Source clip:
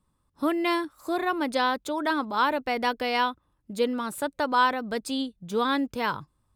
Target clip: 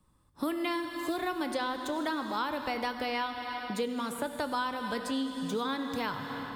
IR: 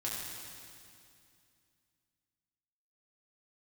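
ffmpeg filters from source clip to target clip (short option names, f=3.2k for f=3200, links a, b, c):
-filter_complex "[0:a]asettb=1/sr,asplit=3[a][b][c];[a]atrim=end=0.714[d];[b]atrim=start=0.71:end=1.23,asetpts=PTS-STARTPTS,afade=t=in:d=0.004:c=qsin,afade=t=out:st=0.516:d=0.004:c=qsin,acrusher=bits=9:mode=log:mix=0:aa=0.000001[e];[c]atrim=start=1.226[f];[d][e]acrossfade=d=0.004:c1=hsin:c2=qsin[g];[g][f]acrossfade=d=0.004:c1=qsin:c2=hsin,asplit=2[h][i];[1:a]atrim=start_sample=2205[j];[i][j]afir=irnorm=-1:irlink=0,volume=-7dB[k];[h][k]amix=inputs=2:normalize=0,acrossover=split=170|3400[l][m][n];[l]acompressor=threshold=-49dB:ratio=4[o];[m]acompressor=threshold=-34dB:ratio=4[p];[n]acompressor=threshold=-47dB:ratio=4[q];[o][p][q]amix=inputs=3:normalize=0,volume=1.5dB"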